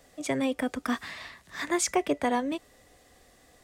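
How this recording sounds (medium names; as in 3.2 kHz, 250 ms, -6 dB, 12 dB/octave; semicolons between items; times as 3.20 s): noise floor -60 dBFS; spectral tilt -3.0 dB/octave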